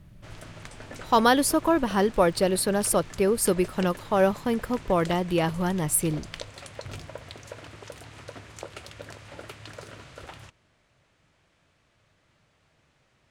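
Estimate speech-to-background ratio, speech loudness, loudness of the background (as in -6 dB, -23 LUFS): 19.0 dB, -24.0 LUFS, -43.0 LUFS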